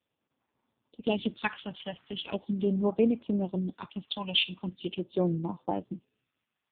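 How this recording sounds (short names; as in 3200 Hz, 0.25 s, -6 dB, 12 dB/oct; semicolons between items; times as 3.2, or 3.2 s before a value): phasing stages 2, 0.41 Hz, lowest notch 400–3100 Hz; AMR-NB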